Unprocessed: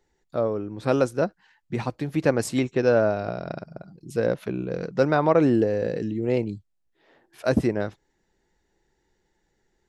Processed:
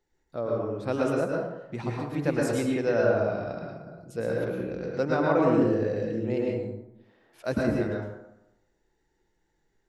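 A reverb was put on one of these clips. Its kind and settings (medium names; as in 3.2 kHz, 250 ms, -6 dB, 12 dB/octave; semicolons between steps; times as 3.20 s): plate-style reverb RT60 0.9 s, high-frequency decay 0.5×, pre-delay 95 ms, DRR -2.5 dB; trim -7.5 dB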